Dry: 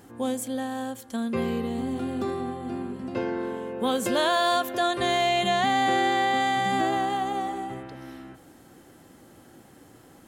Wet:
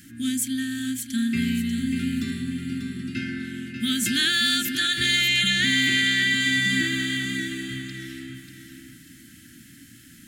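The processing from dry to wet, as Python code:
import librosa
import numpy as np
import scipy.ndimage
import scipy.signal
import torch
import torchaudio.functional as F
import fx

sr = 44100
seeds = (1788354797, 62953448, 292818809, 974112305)

p1 = scipy.signal.sosfilt(scipy.signal.cheby2(4, 40, [430.0, 1100.0], 'bandstop', fs=sr, output='sos'), x)
p2 = fx.low_shelf(p1, sr, hz=280.0, db=-5.0)
p3 = fx.hum_notches(p2, sr, base_hz=50, count=7)
p4 = p3 + fx.echo_feedback(p3, sr, ms=591, feedback_pct=26, wet_db=-8.0, dry=0)
y = p4 * 10.0 ** (8.5 / 20.0)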